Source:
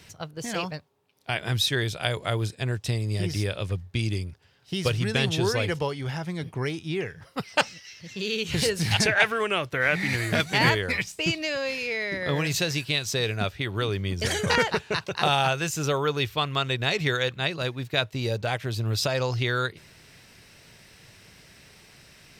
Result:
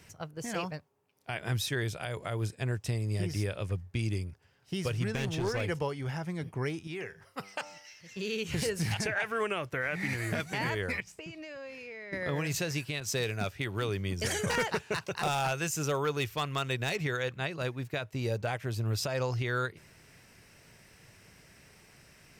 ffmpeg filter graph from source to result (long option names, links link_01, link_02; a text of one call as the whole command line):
ffmpeg -i in.wav -filter_complex "[0:a]asettb=1/sr,asplit=3[link_01][link_02][link_03];[link_01]atrim=end=5.064[link_04];[link_02]atrim=start=5.06:end=5.61,asetpts=PTS-STARTPTS,afade=type=in:duration=0.004:curve=qsin,afade=type=out:start_time=0.546:duration=0.004:curve=qsin,acrossover=split=7200[link_05][link_06];[link_06]acompressor=threshold=-55dB:ratio=4:attack=1:release=60[link_07];[link_05][link_07]amix=inputs=2:normalize=0,aeval=exprs='clip(val(0),-1,0.0668)':channel_layout=same[link_08];[link_03]atrim=start=5.606[link_09];[link_04][link_08]acrossfade=duration=0.004:curve1=hsin:curve2=qsin[link_10];[link_10][link_09]acrossfade=duration=0.004:curve1=qsin:curve2=hsin,asettb=1/sr,asplit=3[link_11][link_12][link_13];[link_11]atrim=end=6.874[link_14];[link_12]atrim=start=6.87:end=8.17,asetpts=PTS-STARTPTS,afade=type=in:duration=0.004:curve=qsin,afade=type=out:start_time=1.296:duration=0.004:curve=qsin,lowshelf=frequency=460:gain=-9,bandreject=frequency=98.43:width_type=h:width=4,bandreject=frequency=196.86:width_type=h:width=4,bandreject=frequency=295.29:width_type=h:width=4,bandreject=frequency=393.72:width_type=h:width=4,bandreject=frequency=492.15:width_type=h:width=4,bandreject=frequency=590.58:width_type=h:width=4,bandreject=frequency=689.01:width_type=h:width=4,bandreject=frequency=787.44:width_type=h:width=4,bandreject=frequency=885.87:width_type=h:width=4,bandreject=frequency=984.3:width_type=h:width=4,bandreject=frequency=1082.73:width_type=h:width=4,bandreject=frequency=1181.16:width_type=h:width=4,bandreject=frequency=1279.59:width_type=h:width=4,bandreject=frequency=1378.02:width_type=h:width=4[link_15];[link_13]atrim=start=8.166[link_16];[link_14][link_15]acrossfade=duration=0.004:curve1=hsin:curve2=qsin[link_17];[link_17][link_16]acrossfade=duration=0.004:curve1=qsin:curve2=hsin,asettb=1/sr,asplit=3[link_18][link_19][link_20];[link_18]atrim=end=11.004[link_21];[link_19]atrim=start=11:end=12.13,asetpts=PTS-STARTPTS,afade=type=in:duration=0.004:curve=qsin,afade=type=out:start_time=1.126:duration=0.004:curve=qsin,aemphasis=mode=reproduction:type=cd,acompressor=threshold=-36dB:ratio=6:attack=3.2:release=140:knee=1:detection=peak[link_22];[link_20]atrim=start=12.126[link_23];[link_21][link_22]acrossfade=duration=0.004:curve1=hsin:curve2=qsin[link_24];[link_24][link_23]acrossfade=duration=0.004:curve1=qsin:curve2=hsin,asettb=1/sr,asplit=3[link_25][link_26][link_27];[link_25]atrim=end=13.004[link_28];[link_26]atrim=start=13:end=16.96,asetpts=PTS-STARTPTS,afade=type=in:duration=0.004:curve=qsin,afade=type=out:start_time=3.956:duration=0.004:curve=qsin,highpass=69,volume=17dB,asoftclip=hard,volume=-17dB,adynamicequalizer=threshold=0.0112:dfrequency=2500:dqfactor=0.7:tfrequency=2500:tqfactor=0.7:attack=5:release=100:ratio=0.375:range=2:mode=boostabove:tftype=highshelf[link_29];[link_27]atrim=start=16.956[link_30];[link_28][link_29]acrossfade=duration=0.004:curve1=hsin:curve2=qsin[link_31];[link_31][link_30]acrossfade=duration=0.004:curve1=qsin:curve2=hsin,equalizer=frequency=3800:width_type=o:width=0.71:gain=-8,alimiter=limit=-17.5dB:level=0:latency=1:release=146,volume=-4dB" out.wav